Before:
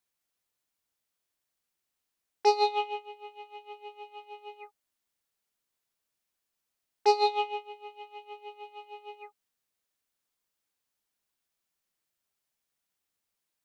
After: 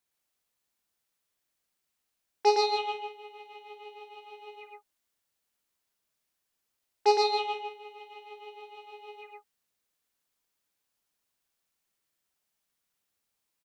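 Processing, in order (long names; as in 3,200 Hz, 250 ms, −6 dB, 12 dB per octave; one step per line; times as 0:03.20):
loudspeakers that aren't time-aligned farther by 18 metres −9 dB, 39 metres −2 dB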